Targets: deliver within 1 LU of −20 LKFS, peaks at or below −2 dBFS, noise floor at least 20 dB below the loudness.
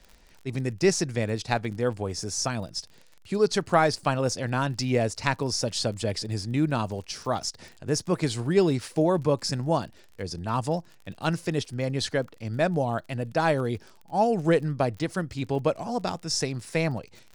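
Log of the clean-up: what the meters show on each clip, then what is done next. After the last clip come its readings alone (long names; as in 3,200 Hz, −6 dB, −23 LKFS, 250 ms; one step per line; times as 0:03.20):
crackle rate 33 per second; integrated loudness −27.5 LKFS; sample peak −7.0 dBFS; target loudness −20.0 LKFS
→ click removal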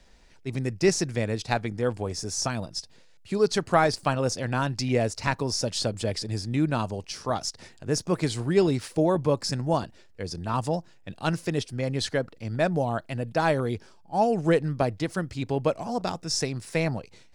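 crackle rate 0.23 per second; integrated loudness −27.5 LKFS; sample peak −7.0 dBFS; target loudness −20.0 LKFS
→ level +7.5 dB
brickwall limiter −2 dBFS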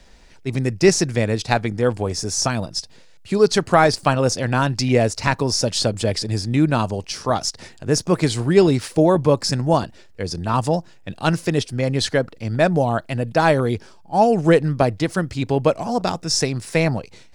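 integrated loudness −20.0 LKFS; sample peak −2.0 dBFS; background noise floor −46 dBFS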